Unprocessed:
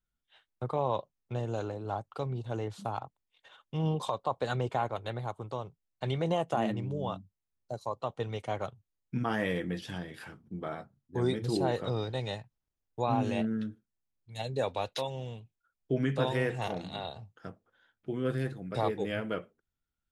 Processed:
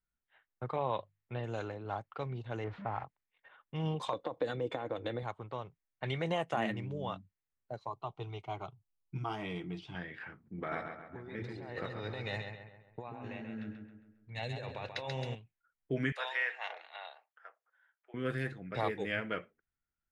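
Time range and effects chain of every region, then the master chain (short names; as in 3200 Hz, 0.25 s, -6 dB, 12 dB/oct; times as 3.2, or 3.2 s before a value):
0.76–1.44 steep low-pass 4500 Hz 48 dB/oct + notches 50/100/150 Hz
2.64–3.04 zero-crossing step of -39 dBFS + LPF 1500 Hz
4.13–5.23 bell 180 Hz +4 dB 2 oct + compressor 10:1, threshold -35 dBFS + small resonant body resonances 310/480/3500 Hz, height 16 dB
7.87–9.95 low shelf 78 Hz +7.5 dB + fixed phaser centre 350 Hz, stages 8
10.58–15.35 notch 3200 Hz, Q 8.7 + negative-ratio compressor -38 dBFS + feedback echo 0.135 s, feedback 48%, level -6.5 dB
16.12–18.14 Bessel high-pass 920 Hz, order 6 + notch 7900 Hz, Q 11
whole clip: low-pass opened by the level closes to 1400 Hz, open at -26.5 dBFS; bell 2000 Hz +11 dB 1.1 oct; gain -5 dB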